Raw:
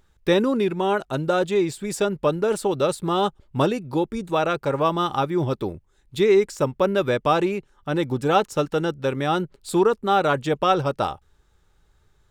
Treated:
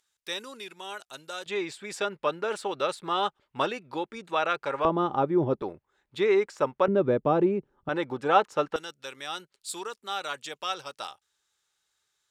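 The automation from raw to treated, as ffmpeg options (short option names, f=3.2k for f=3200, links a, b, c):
-af "asetnsamples=n=441:p=0,asendcmd='1.46 bandpass f 2000;4.85 bandpass f 430;5.62 bandpass f 1200;6.88 bandpass f 290;7.89 bandpass f 1200;8.76 bandpass f 6700',bandpass=f=7.9k:t=q:w=0.64:csg=0"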